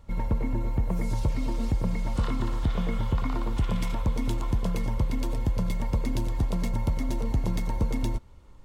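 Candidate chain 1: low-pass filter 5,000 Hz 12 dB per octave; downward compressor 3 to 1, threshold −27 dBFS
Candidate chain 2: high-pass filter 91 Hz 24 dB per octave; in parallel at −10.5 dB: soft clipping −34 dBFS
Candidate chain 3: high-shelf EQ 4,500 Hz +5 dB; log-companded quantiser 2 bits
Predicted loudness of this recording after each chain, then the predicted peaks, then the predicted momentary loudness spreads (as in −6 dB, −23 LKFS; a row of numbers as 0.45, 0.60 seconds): −33.5, −31.5, −29.5 LKFS; −18.0, −16.0, −24.5 dBFS; 1, 2, 1 LU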